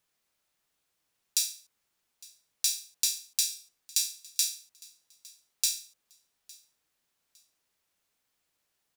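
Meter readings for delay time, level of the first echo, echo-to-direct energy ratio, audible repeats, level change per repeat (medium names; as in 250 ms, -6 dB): 858 ms, -23.5 dB, -23.0 dB, 2, -11.0 dB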